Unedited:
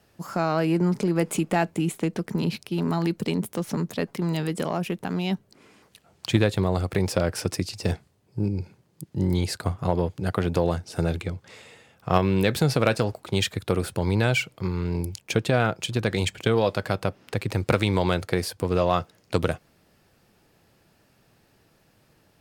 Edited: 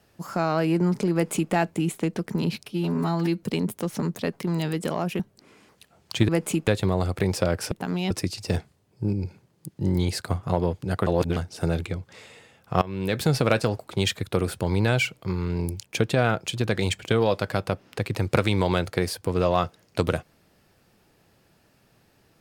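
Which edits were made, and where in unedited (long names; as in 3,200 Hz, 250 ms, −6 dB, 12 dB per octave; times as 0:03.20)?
0:01.13–0:01.52: duplicate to 0:06.42
0:02.66–0:03.17: time-stretch 1.5×
0:04.94–0:05.33: move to 0:07.46
0:10.42–0:10.72: reverse
0:12.17–0:12.65: fade in, from −19.5 dB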